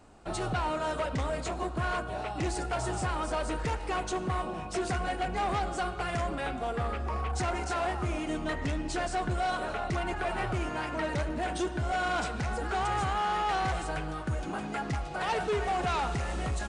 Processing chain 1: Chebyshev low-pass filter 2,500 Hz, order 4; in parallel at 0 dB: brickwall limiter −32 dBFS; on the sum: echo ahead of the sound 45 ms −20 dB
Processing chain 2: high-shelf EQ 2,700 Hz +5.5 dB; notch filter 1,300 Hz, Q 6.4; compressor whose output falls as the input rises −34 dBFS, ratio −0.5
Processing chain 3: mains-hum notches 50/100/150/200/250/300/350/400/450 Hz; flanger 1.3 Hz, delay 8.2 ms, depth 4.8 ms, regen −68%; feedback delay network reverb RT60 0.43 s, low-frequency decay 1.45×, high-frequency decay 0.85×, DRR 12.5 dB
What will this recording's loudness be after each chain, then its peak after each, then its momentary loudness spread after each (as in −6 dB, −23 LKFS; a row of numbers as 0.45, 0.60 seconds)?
−29.0, −35.5, −36.0 LKFS; −20.0, −20.5, −24.0 dBFS; 4, 4, 5 LU